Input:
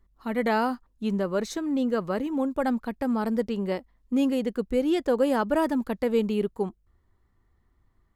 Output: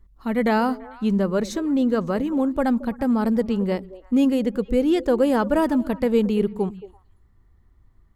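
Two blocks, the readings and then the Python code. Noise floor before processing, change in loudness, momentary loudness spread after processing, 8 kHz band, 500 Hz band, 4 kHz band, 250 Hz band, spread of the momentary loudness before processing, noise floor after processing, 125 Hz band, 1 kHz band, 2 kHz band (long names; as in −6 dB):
−67 dBFS, +5.0 dB, 6 LU, can't be measured, +4.0 dB, +2.5 dB, +6.0 dB, 6 LU, −57 dBFS, +7.0 dB, +3.0 dB, +2.5 dB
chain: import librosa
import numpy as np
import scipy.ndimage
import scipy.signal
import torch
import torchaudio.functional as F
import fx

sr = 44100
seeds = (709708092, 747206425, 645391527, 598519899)

y = fx.low_shelf(x, sr, hz=190.0, db=8.5)
y = fx.echo_stepped(y, sr, ms=112, hz=170.0, octaves=1.4, feedback_pct=70, wet_db=-12.0)
y = F.gain(torch.from_numpy(y), 2.5).numpy()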